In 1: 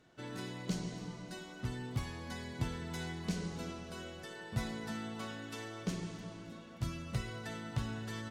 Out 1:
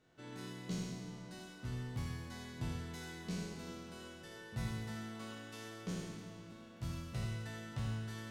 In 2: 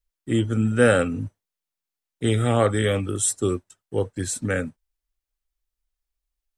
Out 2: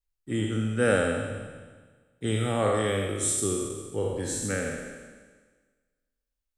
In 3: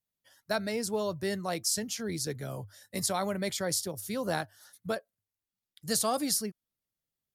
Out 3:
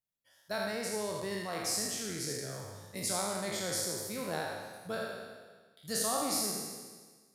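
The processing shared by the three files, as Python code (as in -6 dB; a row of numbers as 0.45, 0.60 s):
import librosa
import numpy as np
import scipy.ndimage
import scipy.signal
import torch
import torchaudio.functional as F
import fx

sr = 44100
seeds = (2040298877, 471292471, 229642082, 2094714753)

y = fx.spec_trails(x, sr, decay_s=1.47)
y = y + 10.0 ** (-8.0 / 20.0) * np.pad(y, (int(81 * sr / 1000.0), 0))[:len(y)]
y = y * librosa.db_to_amplitude(-8.0)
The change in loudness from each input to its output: -3.0, -4.5, -3.0 LU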